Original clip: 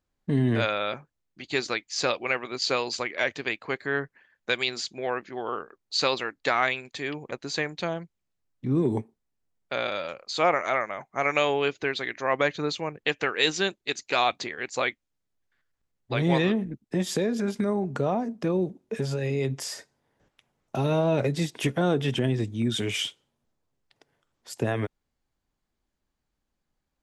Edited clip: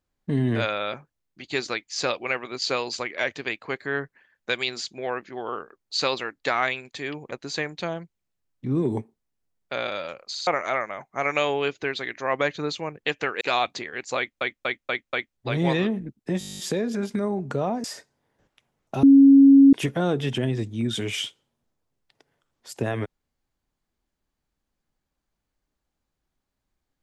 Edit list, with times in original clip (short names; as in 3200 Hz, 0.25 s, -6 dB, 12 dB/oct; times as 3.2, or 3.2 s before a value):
10.29 stutter in place 0.06 s, 3 plays
13.41–14.06 cut
14.82 stutter in place 0.24 s, 5 plays
17.04 stutter 0.02 s, 11 plays
18.29–19.65 cut
20.84–21.54 bleep 275 Hz -8.5 dBFS